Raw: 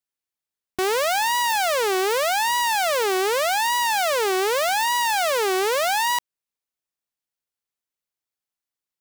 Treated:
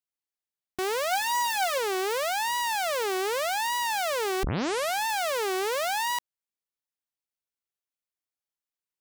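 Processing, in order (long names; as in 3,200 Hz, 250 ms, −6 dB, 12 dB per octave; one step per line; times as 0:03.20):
0:01.11–0:01.78: comb filter 4 ms, depth 65%
0:04.43: tape start 0.65 s
level −6.5 dB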